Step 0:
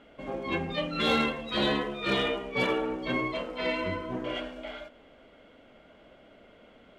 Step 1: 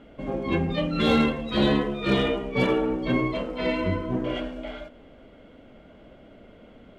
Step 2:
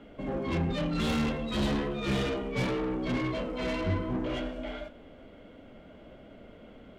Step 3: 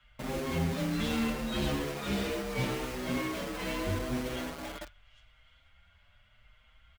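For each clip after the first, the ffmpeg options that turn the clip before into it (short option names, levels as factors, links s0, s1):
-af "lowshelf=f=410:g=11.5"
-filter_complex "[0:a]flanger=delay=9.8:depth=9.7:regen=-70:speed=0.36:shape=sinusoidal,acrossover=split=150[s0][s1];[s1]asoftclip=type=tanh:threshold=0.0237[s2];[s0][s2]amix=inputs=2:normalize=0,volume=1.5"
-filter_complex "[0:a]acrossover=split=100|1100|2400[s0][s1][s2][s3];[s1]acrusher=bits=5:mix=0:aa=0.000001[s4];[s3]aecho=1:1:806:0.188[s5];[s0][s4][s2][s5]amix=inputs=4:normalize=0,asplit=2[s6][s7];[s7]adelay=6.3,afreqshift=0.79[s8];[s6][s8]amix=inputs=2:normalize=1"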